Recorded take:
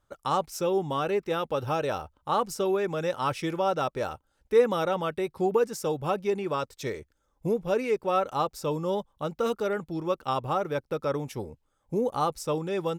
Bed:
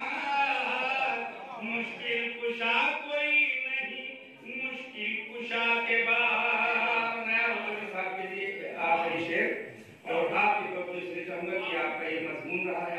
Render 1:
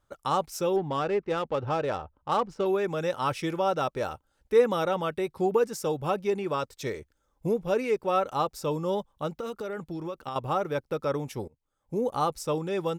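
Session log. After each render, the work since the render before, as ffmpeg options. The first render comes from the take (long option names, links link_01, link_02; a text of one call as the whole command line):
ffmpeg -i in.wav -filter_complex "[0:a]asettb=1/sr,asplit=3[link_01][link_02][link_03];[link_01]atrim=end=0.764[link_04];[link_02]atrim=start=0.76:end=2.66,asetpts=PTS-STARTPTS,afade=type=in:duration=0.004:curve=qsin,afade=type=out:start_time=1.896:duration=0.004:curve=qsin,adynamicsmooth=sensitivity=4:basefreq=1800[link_05];[link_03]atrim=start=2.656[link_06];[link_04][link_05]acrossfade=duration=0.004:curve1=hsin:curve2=qsin[link_07];[link_07][link_06]acrossfade=duration=0.004:curve1=qsin:curve2=hsin,asettb=1/sr,asplit=3[link_08][link_09][link_10];[link_08]atrim=end=9.294[link_11];[link_09]atrim=start=9.29:end=10.36,asetpts=PTS-STARTPTS,afade=type=in:duration=0.004:curve=qsin,afade=type=out:start_time=1.066:duration=0.004:curve=qsin,acompressor=threshold=-30dB:ratio=10:attack=3.2:release=140:knee=1:detection=peak[link_12];[link_10]atrim=start=10.356[link_13];[link_11][link_12]acrossfade=duration=0.004:curve1=hsin:curve2=qsin[link_14];[link_14][link_13]acrossfade=duration=0.004:curve1=qsin:curve2=hsin,asplit=2[link_15][link_16];[link_15]atrim=end=11.48,asetpts=PTS-STARTPTS,afade=type=out:start_time=11.476:duration=0.004:curve=hsin:silence=0.0668344[link_17];[link_16]atrim=start=11.48,asetpts=PTS-STARTPTS,afade=type=in:duration=0.62:silence=0.0668344[link_18];[link_17][link_18]concat=n=2:v=0:a=1" out.wav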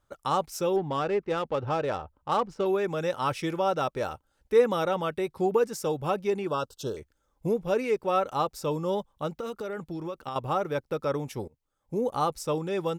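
ffmpeg -i in.wav -filter_complex "[0:a]asettb=1/sr,asplit=3[link_01][link_02][link_03];[link_01]atrim=end=6.474[link_04];[link_02]atrim=start=6.47:end=6.97,asetpts=PTS-STARTPTS,afade=type=in:duration=0.004:curve=qsin,afade=type=out:start_time=0.496:duration=0.004:curve=qsin,asuperstop=centerf=2100:order=20:qfactor=2.2[link_05];[link_03]atrim=start=6.966[link_06];[link_04][link_05]acrossfade=duration=0.004:curve1=hsin:curve2=qsin[link_07];[link_07][link_06]acrossfade=duration=0.004:curve1=qsin:curve2=hsin" out.wav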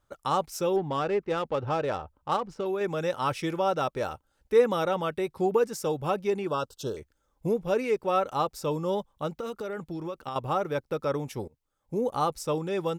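ffmpeg -i in.wav -filter_complex "[0:a]asettb=1/sr,asplit=3[link_01][link_02][link_03];[link_01]atrim=end=2.364[link_04];[link_02]atrim=start=2.36:end=2.81,asetpts=PTS-STARTPTS,afade=type=in:duration=0.004:curve=qsin,afade=type=out:start_time=0.446:duration=0.004:curve=qsin,acompressor=threshold=-29dB:ratio=2:attack=3.2:release=140:knee=1:detection=peak[link_05];[link_03]atrim=start=2.806[link_06];[link_04][link_05]acrossfade=duration=0.004:curve1=hsin:curve2=qsin[link_07];[link_07][link_06]acrossfade=duration=0.004:curve1=qsin:curve2=hsin" out.wav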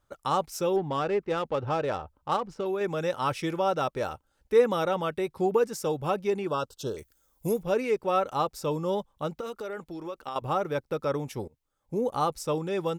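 ffmpeg -i in.wav -filter_complex "[0:a]asettb=1/sr,asplit=3[link_01][link_02][link_03];[link_01]atrim=end=6.984[link_04];[link_02]atrim=start=6.98:end=7.63,asetpts=PTS-STARTPTS,afade=type=in:duration=0.004:curve=qsin,afade=type=out:start_time=0.646:duration=0.004:curve=qsin,aemphasis=mode=production:type=75fm[link_05];[link_03]atrim=start=7.626[link_06];[link_04][link_05]acrossfade=duration=0.004:curve1=hsin:curve2=qsin[link_07];[link_07][link_06]acrossfade=duration=0.004:curve1=qsin:curve2=hsin,asettb=1/sr,asplit=3[link_08][link_09][link_10];[link_08]atrim=end=9.414[link_11];[link_09]atrim=start=9.41:end=10.42,asetpts=PTS-STARTPTS,afade=type=in:duration=0.004:curve=qsin,afade=type=out:start_time=1.006:duration=0.004:curve=qsin,equalizer=frequency=120:width_type=o:width=1.6:gain=-10.5[link_12];[link_10]atrim=start=10.416[link_13];[link_11][link_12]acrossfade=duration=0.004:curve1=hsin:curve2=qsin[link_14];[link_14][link_13]acrossfade=duration=0.004:curve1=qsin:curve2=hsin" out.wav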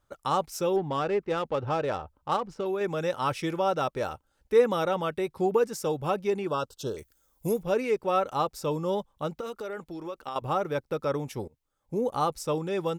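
ffmpeg -i in.wav -af anull out.wav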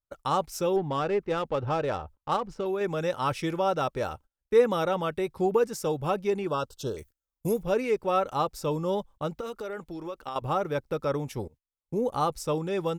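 ffmpeg -i in.wav -af "agate=range=-26dB:threshold=-49dB:ratio=16:detection=peak,lowshelf=frequency=64:gain=10" out.wav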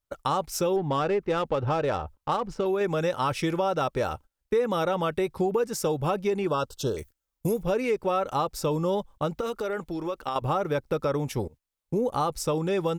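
ffmpeg -i in.wav -filter_complex "[0:a]asplit=2[link_01][link_02];[link_02]alimiter=limit=-20dB:level=0:latency=1,volume=-0.5dB[link_03];[link_01][link_03]amix=inputs=2:normalize=0,acompressor=threshold=-23dB:ratio=3" out.wav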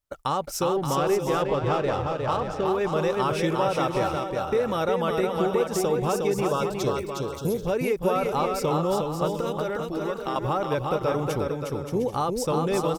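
ffmpeg -i in.wav -af "aecho=1:1:360|576|705.6|783.4|830:0.631|0.398|0.251|0.158|0.1" out.wav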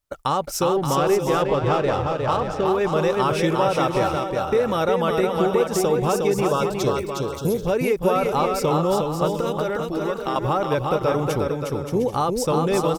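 ffmpeg -i in.wav -af "volume=4dB" out.wav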